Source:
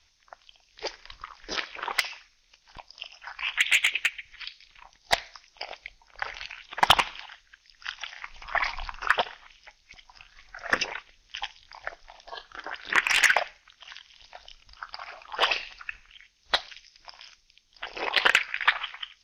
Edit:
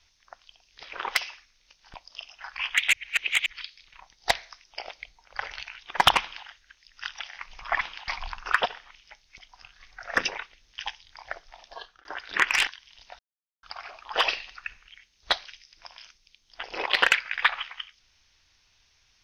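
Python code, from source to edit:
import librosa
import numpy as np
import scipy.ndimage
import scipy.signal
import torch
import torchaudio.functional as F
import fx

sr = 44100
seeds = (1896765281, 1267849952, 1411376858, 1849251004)

y = fx.edit(x, sr, fx.cut(start_s=0.83, length_s=0.83),
    fx.reverse_span(start_s=3.76, length_s=0.53),
    fx.duplicate(start_s=7.03, length_s=0.27, to_s=8.64),
    fx.fade_out_span(start_s=12.2, length_s=0.41, curve='qsin'),
    fx.cut(start_s=13.23, length_s=0.67),
    fx.silence(start_s=14.42, length_s=0.44), tone=tone)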